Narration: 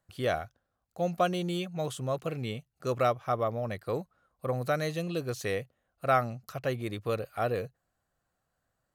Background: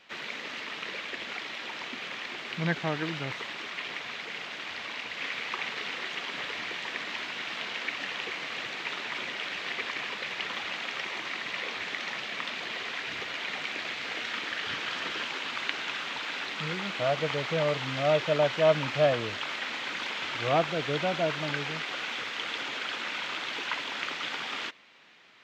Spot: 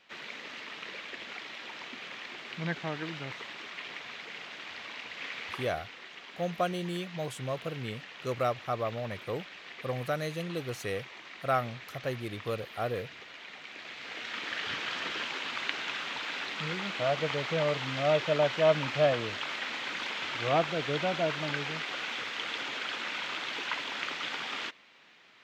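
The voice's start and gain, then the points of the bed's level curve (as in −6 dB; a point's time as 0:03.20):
5.40 s, −3.0 dB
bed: 0:05.54 −5 dB
0:05.79 −12 dB
0:13.62 −12 dB
0:14.55 −1.5 dB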